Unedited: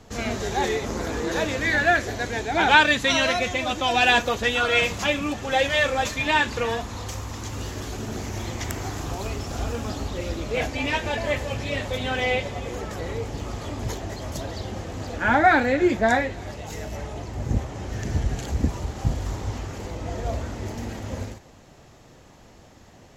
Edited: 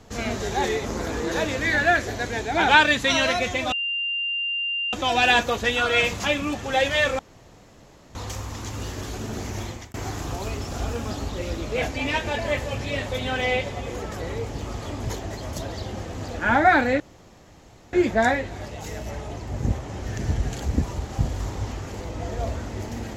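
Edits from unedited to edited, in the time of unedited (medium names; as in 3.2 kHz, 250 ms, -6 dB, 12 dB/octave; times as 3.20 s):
3.72 s: add tone 2.79 kHz -23.5 dBFS 1.21 s
5.98–6.94 s: room tone
8.40–8.73 s: fade out
15.79 s: insert room tone 0.93 s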